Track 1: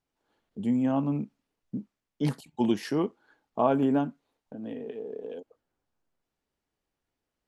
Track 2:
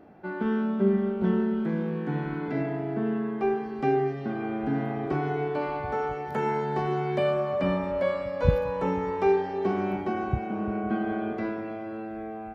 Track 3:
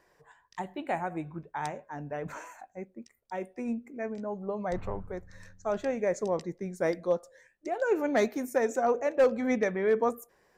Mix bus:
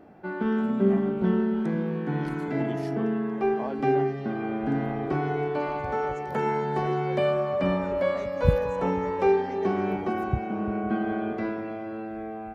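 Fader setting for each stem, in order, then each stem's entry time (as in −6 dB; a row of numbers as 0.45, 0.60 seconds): −10.5, +1.0, −16.0 decibels; 0.00, 0.00, 0.00 seconds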